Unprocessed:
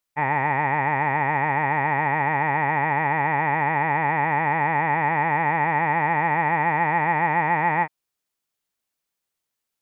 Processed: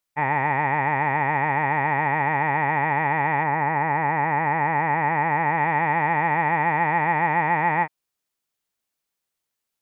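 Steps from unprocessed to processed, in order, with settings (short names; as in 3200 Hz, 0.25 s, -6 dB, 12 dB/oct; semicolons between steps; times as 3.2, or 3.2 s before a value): 3.43–5.56 LPF 2000 Hz -> 3000 Hz 12 dB/oct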